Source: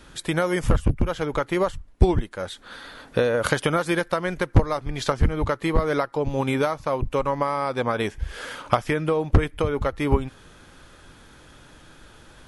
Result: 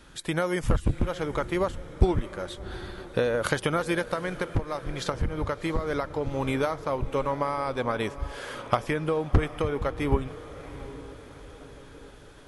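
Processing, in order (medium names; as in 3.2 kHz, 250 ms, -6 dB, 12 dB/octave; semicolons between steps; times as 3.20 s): echo that smears into a reverb 718 ms, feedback 49%, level -15 dB; 4.03–6.41 s: compression 3:1, threshold -20 dBFS, peak gain reduction 8.5 dB; band-passed feedback delay 959 ms, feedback 75%, band-pass 410 Hz, level -22 dB; trim -4 dB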